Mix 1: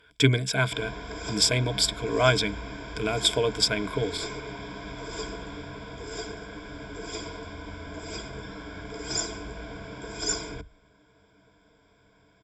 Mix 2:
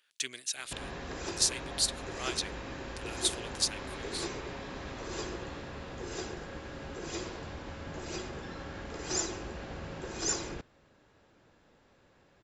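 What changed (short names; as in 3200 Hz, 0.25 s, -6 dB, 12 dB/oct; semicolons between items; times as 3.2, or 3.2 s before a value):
speech: add differentiator; master: remove ripple EQ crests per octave 1.7, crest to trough 16 dB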